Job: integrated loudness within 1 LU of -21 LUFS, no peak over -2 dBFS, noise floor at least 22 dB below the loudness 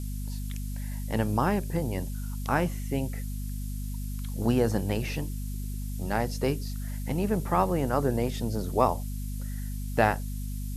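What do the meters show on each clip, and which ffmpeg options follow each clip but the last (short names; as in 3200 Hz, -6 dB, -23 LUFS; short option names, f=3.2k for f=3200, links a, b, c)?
hum 50 Hz; harmonics up to 250 Hz; hum level -31 dBFS; noise floor -34 dBFS; noise floor target -52 dBFS; loudness -30.0 LUFS; peak -7.5 dBFS; loudness target -21.0 LUFS
-> -af "bandreject=f=50:t=h:w=6,bandreject=f=100:t=h:w=6,bandreject=f=150:t=h:w=6,bandreject=f=200:t=h:w=6,bandreject=f=250:t=h:w=6"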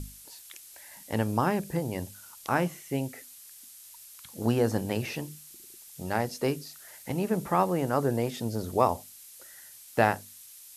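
hum none; noise floor -50 dBFS; noise floor target -52 dBFS
-> -af "afftdn=nr=6:nf=-50"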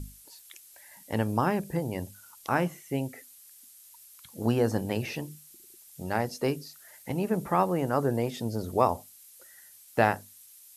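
noise floor -54 dBFS; loudness -29.5 LUFS; peak -8.0 dBFS; loudness target -21.0 LUFS
-> -af "volume=8.5dB,alimiter=limit=-2dB:level=0:latency=1"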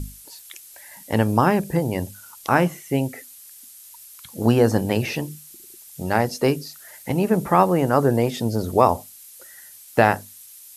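loudness -21.0 LUFS; peak -2.0 dBFS; noise floor -45 dBFS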